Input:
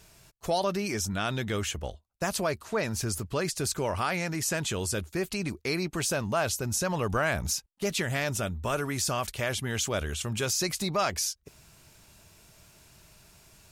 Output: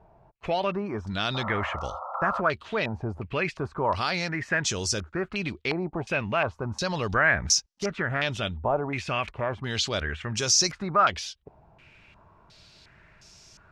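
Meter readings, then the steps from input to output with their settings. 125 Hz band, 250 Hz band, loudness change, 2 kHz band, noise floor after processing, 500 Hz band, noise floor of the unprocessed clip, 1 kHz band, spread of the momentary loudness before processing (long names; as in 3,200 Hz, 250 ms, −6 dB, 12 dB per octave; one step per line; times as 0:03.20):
0.0 dB, +0.5 dB, +3.0 dB, +5.5 dB, −58 dBFS, +1.0 dB, −62 dBFS, +5.0 dB, 4 LU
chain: sound drawn into the spectrogram noise, 0:01.34–0:02.41, 510–1,400 Hz −37 dBFS
low-pass on a step sequencer 2.8 Hz 810–5,700 Hz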